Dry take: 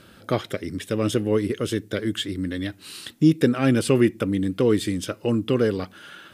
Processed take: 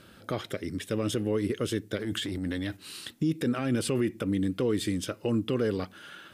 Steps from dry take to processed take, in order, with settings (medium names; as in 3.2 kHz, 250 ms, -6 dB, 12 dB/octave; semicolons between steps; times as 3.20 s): 1.97–2.77 s: transient shaper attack -10 dB, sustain +6 dB; peak limiter -15 dBFS, peak gain reduction 10.5 dB; trim -3.5 dB